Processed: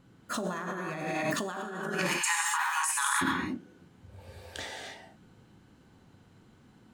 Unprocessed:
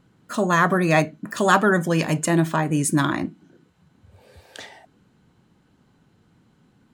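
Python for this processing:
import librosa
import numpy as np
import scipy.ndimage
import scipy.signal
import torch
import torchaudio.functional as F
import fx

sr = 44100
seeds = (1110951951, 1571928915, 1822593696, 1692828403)

y = fx.brickwall_highpass(x, sr, low_hz=800.0, at=(1.88, 3.21), fade=0.02)
y = fx.rev_gated(y, sr, seeds[0], gate_ms=330, shape='flat', drr_db=-1.0)
y = fx.over_compress(y, sr, threshold_db=-25.0, ratio=-1.0)
y = y * librosa.db_to_amplitude(-7.0)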